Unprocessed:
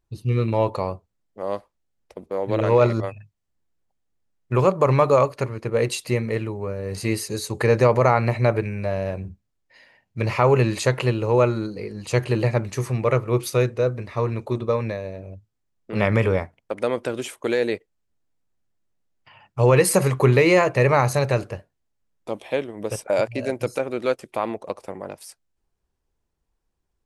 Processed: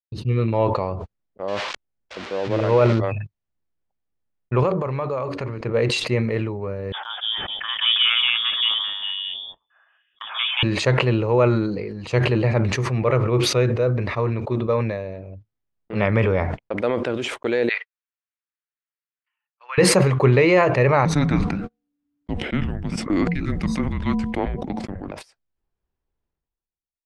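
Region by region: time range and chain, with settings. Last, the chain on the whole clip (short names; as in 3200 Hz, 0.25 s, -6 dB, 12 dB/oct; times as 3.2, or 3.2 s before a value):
1.48–2.99 switching spikes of -13 dBFS + air absorption 140 m
4.63–5.61 de-hum 93.81 Hz, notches 5 + compressor 3:1, threshold -25 dBFS
6.92–10.63 inverted band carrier 3500 Hz + three bands offset in time mids, highs, lows 0.18/0.43 s, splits 650/2200 Hz
17.69–19.78 HPF 1300 Hz 24 dB/oct + air absorption 220 m
21.05–25.12 de-hum 255.4 Hz, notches 5 + frequency shift -290 Hz
whole clip: LPF 3600 Hz 12 dB/oct; gate -39 dBFS, range -44 dB; sustainer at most 37 dB/s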